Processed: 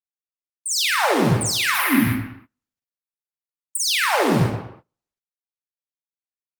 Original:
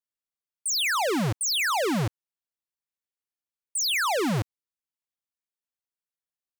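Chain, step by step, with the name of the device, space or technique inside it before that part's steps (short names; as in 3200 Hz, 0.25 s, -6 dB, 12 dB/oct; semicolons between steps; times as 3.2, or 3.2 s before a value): 1.74–3.8 EQ curve 110 Hz 0 dB, 160 Hz -12 dB, 260 Hz +10 dB, 450 Hz -24 dB, 1100 Hz -4 dB, 2000 Hz +8 dB, 3200 Hz 0 dB, 7400 Hz -9 dB, 11000 Hz +14 dB; speakerphone in a meeting room (reverb RT60 0.70 s, pre-delay 40 ms, DRR -3 dB; speakerphone echo 0.13 s, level -10 dB; AGC gain up to 9 dB; gate -40 dBFS, range -26 dB; gain -4 dB; Opus 32 kbps 48000 Hz)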